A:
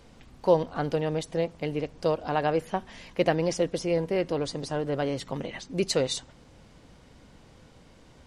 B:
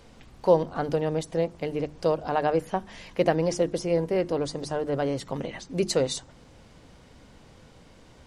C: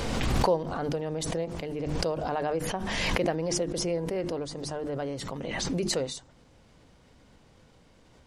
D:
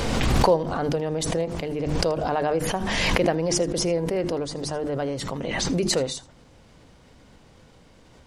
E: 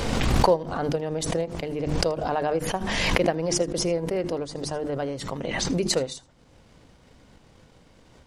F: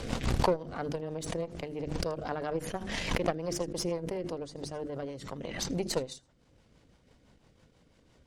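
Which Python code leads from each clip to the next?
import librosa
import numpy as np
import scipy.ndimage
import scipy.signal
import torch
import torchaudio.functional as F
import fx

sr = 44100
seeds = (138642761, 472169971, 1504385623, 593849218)

y1 = fx.hum_notches(x, sr, base_hz=50, count=7)
y1 = fx.dynamic_eq(y1, sr, hz=2900.0, q=0.84, threshold_db=-45.0, ratio=4.0, max_db=-5)
y1 = y1 * 10.0 ** (2.0 / 20.0)
y2 = fx.pre_swell(y1, sr, db_per_s=21.0)
y2 = y2 * 10.0 ** (-6.5 / 20.0)
y3 = y2 + 10.0 ** (-21.0 / 20.0) * np.pad(y2, (int(80 * sr / 1000.0), 0))[:len(y2)]
y3 = y3 * 10.0 ** (5.5 / 20.0)
y4 = fx.transient(y3, sr, attack_db=5, sustain_db=-5)
y4 = y4 * 10.0 ** (-2.0 / 20.0)
y5 = fx.cheby_harmonics(y4, sr, harmonics=(8,), levels_db=(-20,), full_scale_db=-1.0)
y5 = fx.rotary(y5, sr, hz=6.0)
y5 = y5 * 10.0 ** (-7.0 / 20.0)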